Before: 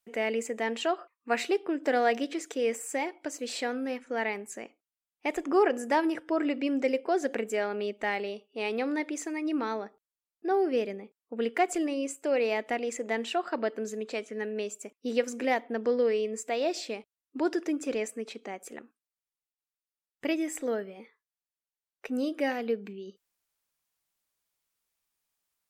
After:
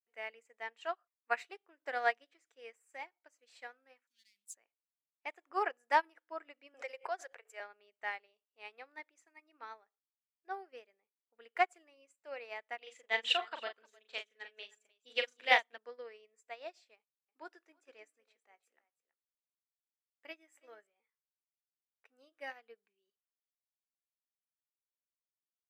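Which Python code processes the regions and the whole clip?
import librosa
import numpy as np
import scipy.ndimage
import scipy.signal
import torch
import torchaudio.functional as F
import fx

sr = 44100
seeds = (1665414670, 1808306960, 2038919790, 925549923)

y = fx.chain(x, sr, fx.leveller(passes=2),
    fx.cheby1_bandstop(low_hz=160.0, high_hz=3500.0, order=3),
    fx.high_shelf(hz=4800.0, db=7.5), at=(4.07, 4.55))
y = fx.chain(y, sr, fx.highpass(hz=440.0, slope=24),
    fx.pre_swell(db_per_s=70.0), at=(6.74, 7.6))
y = fx.chain(y, sr, fx.peak_eq(hz=3400.0, db=14.5, octaves=0.72),
    fx.echo_multitap(ms=(40, 308), db=(-3.5, -10.5)), at=(12.78, 15.78))
y = fx.chain(y, sr, fx.doubler(ms=19.0, db=-13),
    fx.echo_single(ms=325, db=-13.5), at=(16.96, 20.87))
y = scipy.signal.sosfilt(scipy.signal.butter(2, 1100.0, 'highpass', fs=sr, output='sos'), y)
y = fx.high_shelf(y, sr, hz=2300.0, db=-11.0)
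y = fx.upward_expand(y, sr, threshold_db=-50.0, expansion=2.5)
y = y * librosa.db_to_amplitude(8.0)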